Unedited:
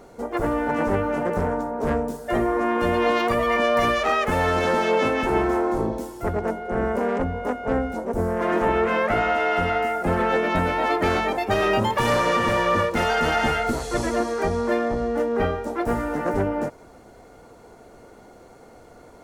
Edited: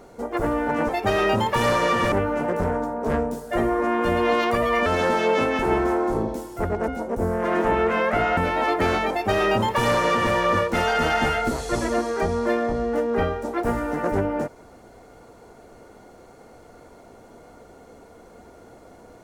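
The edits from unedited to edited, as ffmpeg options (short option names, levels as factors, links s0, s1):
-filter_complex "[0:a]asplit=6[s0][s1][s2][s3][s4][s5];[s0]atrim=end=0.892[s6];[s1]atrim=start=11.328:end=12.562[s7];[s2]atrim=start=0.888:end=3.632[s8];[s3]atrim=start=4.498:end=6.522[s9];[s4]atrim=start=7.848:end=9.342[s10];[s5]atrim=start=10.588[s11];[s6][s7]acrossfade=d=0.004:c1=hsin:c2=hsin[s12];[s12][s8]acrossfade=d=0.004:c1=hsin:c2=hsin[s13];[s13][s9]acrossfade=d=0.004:c1=hsin:c2=hsin[s14];[s14][s10]acrossfade=d=0.004:c1=hsin:c2=hsin[s15];[s15][s11]acrossfade=d=0.004:c1=hsin:c2=hsin"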